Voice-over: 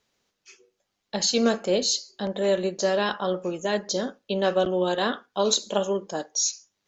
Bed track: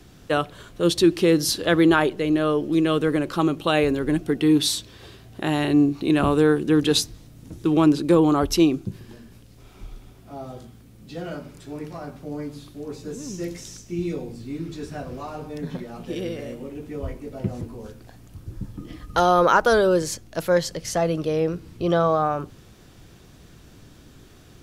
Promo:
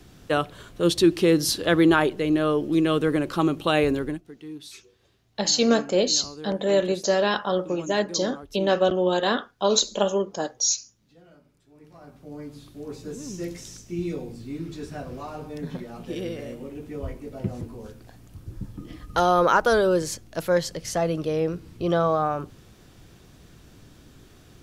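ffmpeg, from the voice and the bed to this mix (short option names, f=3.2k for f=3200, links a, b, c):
-filter_complex "[0:a]adelay=4250,volume=2dB[a];[1:a]volume=18dB,afade=t=out:st=3.97:d=0.24:silence=0.1,afade=t=in:st=11.74:d=1.2:silence=0.112202[b];[a][b]amix=inputs=2:normalize=0"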